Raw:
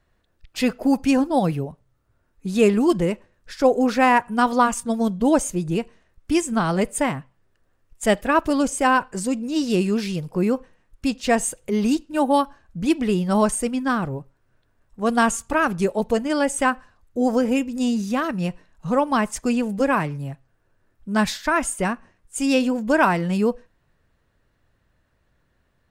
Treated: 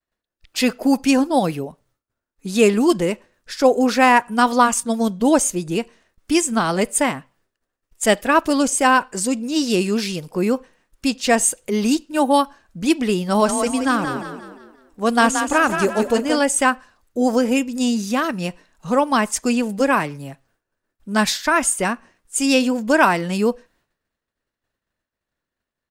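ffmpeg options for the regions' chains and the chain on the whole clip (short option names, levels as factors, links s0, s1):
-filter_complex "[0:a]asettb=1/sr,asplit=3[s0][s1][s2];[s0]atrim=end=13.224[s3];[s1]atrim=start=13.22:end=16.42,asetpts=PTS-STARTPTS,afade=t=in:d=0.004:c=qsin,afade=t=out:st=3.196:d=0.004:c=qsin,acrossover=split=5600[s4][s5];[s5]acompressor=threshold=0.0178:ratio=4:attack=1:release=60[s6];[s4][s6]amix=inputs=2:normalize=0,asplit=6[s7][s8][s9][s10][s11][s12];[s8]adelay=176,afreqshift=30,volume=0.447[s13];[s9]adelay=352,afreqshift=60,volume=0.188[s14];[s10]adelay=528,afreqshift=90,volume=0.0785[s15];[s11]adelay=704,afreqshift=120,volume=0.0331[s16];[s12]adelay=880,afreqshift=150,volume=0.014[s17];[s7][s13][s14][s15][s16][s17]amix=inputs=6:normalize=0,atrim=end_sample=141120[s18];[s2]atrim=start=16.416[s19];[s3][s18]acrossfade=d=0.004:c1=hsin:c2=qsin[s20];[s20][s19]acrossfade=d=0.004:c1=qsin:c2=hsin,agate=range=0.0224:threshold=0.002:ratio=3:detection=peak,firequalizer=gain_entry='entry(130,0);entry(230,8);entry(4700,14)':delay=0.05:min_phase=1,volume=0.501"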